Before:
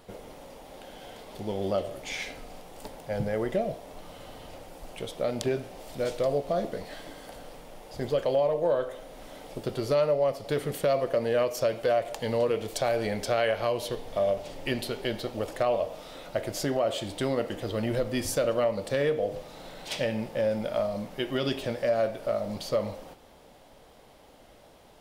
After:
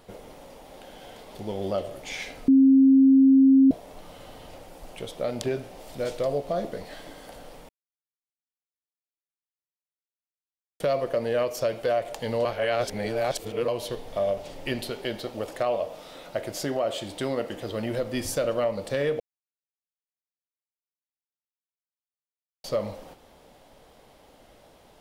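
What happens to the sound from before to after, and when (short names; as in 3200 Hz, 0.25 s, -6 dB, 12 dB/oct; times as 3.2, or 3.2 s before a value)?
2.48–3.71 bleep 268 Hz -12.5 dBFS
7.69–10.8 mute
12.45–13.68 reverse
14.9–18.14 low shelf 84 Hz -8.5 dB
19.2–22.64 mute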